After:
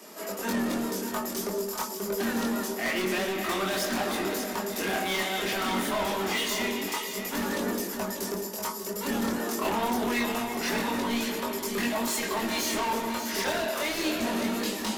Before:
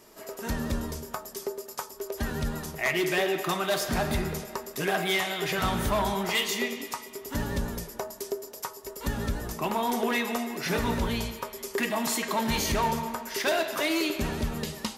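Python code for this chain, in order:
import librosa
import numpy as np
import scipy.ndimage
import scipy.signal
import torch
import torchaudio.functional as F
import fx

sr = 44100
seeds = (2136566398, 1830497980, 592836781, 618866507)

p1 = fx.octave_divider(x, sr, octaves=1, level_db=3.0)
p2 = scipy.signal.sosfilt(scipy.signal.butter(16, 190.0, 'highpass', fs=sr, output='sos'), p1)
p3 = fx.hum_notches(p2, sr, base_hz=50, count=8)
p4 = fx.rider(p3, sr, range_db=4, speed_s=0.5)
p5 = p3 + F.gain(torch.from_numpy(p4), 1.5).numpy()
p6 = 10.0 ** (-25.0 / 20.0) * np.tanh(p5 / 10.0 ** (-25.0 / 20.0))
p7 = fx.chorus_voices(p6, sr, voices=2, hz=0.26, base_ms=23, depth_ms=3.1, mix_pct=45)
p8 = p7 + fx.echo_single(p7, sr, ms=589, db=-8.5, dry=0)
y = F.gain(torch.from_numpy(p8), 2.0).numpy()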